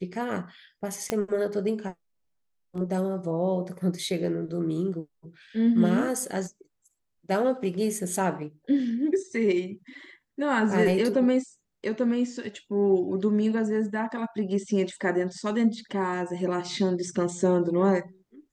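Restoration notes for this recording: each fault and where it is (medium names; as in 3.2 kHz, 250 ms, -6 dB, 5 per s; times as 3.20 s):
1.10 s: pop -12 dBFS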